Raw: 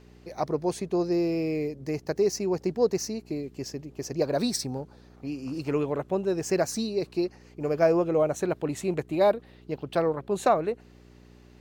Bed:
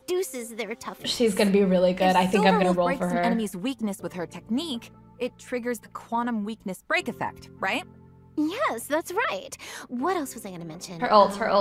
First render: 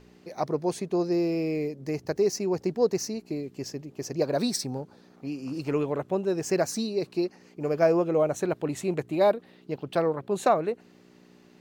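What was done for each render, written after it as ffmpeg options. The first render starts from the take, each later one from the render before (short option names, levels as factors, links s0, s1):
-af "bandreject=f=60:t=h:w=4,bandreject=f=120:t=h:w=4"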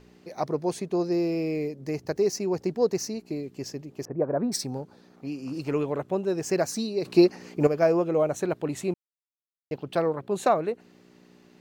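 -filter_complex "[0:a]asettb=1/sr,asplit=3[s0][s1][s2];[s0]atrim=end=4.054[s3];[s1]atrim=start=4.05:end=4.52,asetpts=PTS-STARTPTS,afade=t=in:d=0.004:c=qsin,afade=t=out:st=0.466:d=0.004:c=qsin,lowpass=f=1500:w=0.5412,lowpass=f=1500:w=1.3066[s4];[s2]atrim=start=4.516[s5];[s3][s4]acrossfade=d=0.004:c1=hsin:c2=qsin[s6];[s6][s5]acrossfade=d=0.004:c1=qsin:c2=hsin,asplit=5[s7][s8][s9][s10][s11];[s7]atrim=end=7.052[s12];[s8]atrim=start=7.048:end=7.672,asetpts=PTS-STARTPTS,volume=3.16[s13];[s9]atrim=start=7.668:end=8.94,asetpts=PTS-STARTPTS,afade=t=out:st=1.268:d=0.004:c=hsin[s14];[s10]atrim=start=8.94:end=9.71,asetpts=PTS-STARTPTS,volume=0[s15];[s11]atrim=start=9.71,asetpts=PTS-STARTPTS,afade=t=in:d=0.004:c=hsin[s16];[s12][s13]acrossfade=d=0.004:c1=hsin:c2=hsin[s17];[s14][s15][s16]concat=n=3:v=0:a=1[s18];[s17][s18]acrossfade=d=0.004:c1=hsin:c2=hsin"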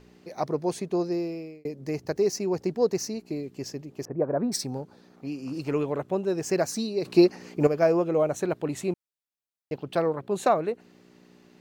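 -filter_complex "[0:a]asplit=2[s0][s1];[s0]atrim=end=1.65,asetpts=PTS-STARTPTS,afade=t=out:st=0.96:d=0.69[s2];[s1]atrim=start=1.65,asetpts=PTS-STARTPTS,afade=t=in:d=0.004:c=hsin[s3];[s2][s3]concat=n=2:v=0:a=1"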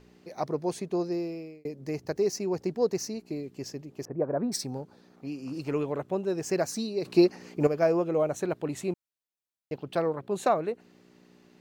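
-af "volume=0.75"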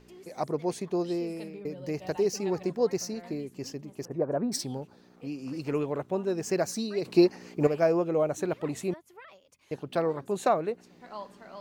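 -filter_complex "[1:a]volume=0.0631[s0];[0:a][s0]amix=inputs=2:normalize=0"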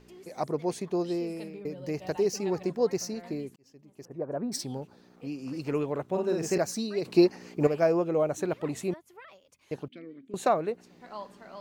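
-filter_complex "[0:a]asettb=1/sr,asplit=3[s0][s1][s2];[s0]atrim=end=6.064[s3];[s1]atrim=start=6.06:end=6.58,asetpts=PTS-STARTPTS,afade=t=in:d=0.004:c=qsin,afade=t=out:st=0.516:d=0.004:c=qsin,asplit=2[s4][s5];[s5]adelay=49,volume=0.708[s6];[s4][s6]amix=inputs=2:normalize=0,atrim=end_sample=22932[s7];[s2]atrim=start=6.576[s8];[s3][s7]acrossfade=d=0.004:c1=hsin:c2=qsin[s9];[s9][s8]acrossfade=d=0.004:c1=qsin:c2=hsin,asettb=1/sr,asplit=3[s10][s11][s12];[s10]atrim=end=9.884[s13];[s11]atrim=start=9.88:end=10.34,asetpts=PTS-STARTPTS,afade=t=in:d=0.004:c=qsin,afade=t=out:st=0.456:d=0.004:c=qsin,asplit=3[s14][s15][s16];[s14]bandpass=f=270:t=q:w=8,volume=1[s17];[s15]bandpass=f=2290:t=q:w=8,volume=0.501[s18];[s16]bandpass=f=3010:t=q:w=8,volume=0.355[s19];[s17][s18][s19]amix=inputs=3:normalize=0[s20];[s12]atrim=start=10.336[s21];[s13][s20]acrossfade=d=0.004:c1=hsin:c2=qsin[s22];[s22][s21]acrossfade=d=0.004:c1=qsin:c2=hsin,asplit=2[s23][s24];[s23]atrim=end=3.56,asetpts=PTS-STARTPTS,afade=t=out:st=3.556:d=0.004:c=hsin[s25];[s24]atrim=start=3.56,asetpts=PTS-STARTPTS,afade=t=in:d=1.26[s26];[s25][s26]concat=n=2:v=0:a=1"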